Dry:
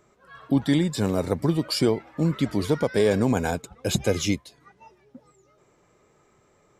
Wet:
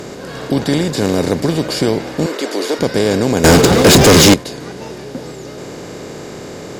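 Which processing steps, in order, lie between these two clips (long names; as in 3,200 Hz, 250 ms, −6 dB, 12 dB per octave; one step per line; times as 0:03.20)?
compressor on every frequency bin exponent 0.4
0:02.26–0:02.79: high-pass filter 320 Hz 24 dB per octave
0:03.44–0:04.34: leveller curve on the samples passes 5
level +2 dB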